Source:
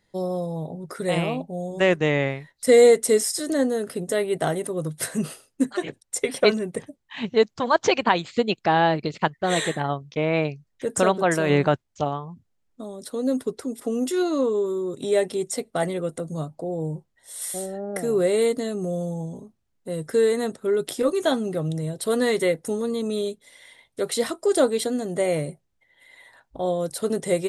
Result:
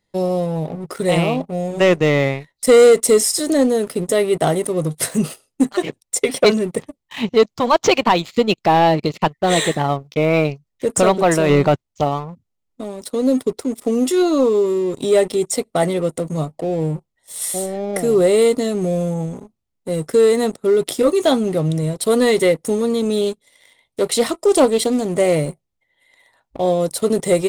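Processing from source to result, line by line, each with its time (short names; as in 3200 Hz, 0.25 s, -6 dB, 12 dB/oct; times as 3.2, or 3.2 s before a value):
23.21–25.36 Doppler distortion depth 0.15 ms
whole clip: sample leveller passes 2; bell 1600 Hz -7.5 dB 0.28 oct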